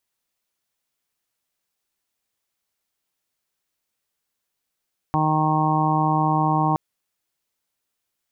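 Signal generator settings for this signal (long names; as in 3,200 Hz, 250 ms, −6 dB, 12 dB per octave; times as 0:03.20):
steady harmonic partials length 1.62 s, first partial 155 Hz, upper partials −3/−15/−11.5/−1/−2.5/−3 dB, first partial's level −22 dB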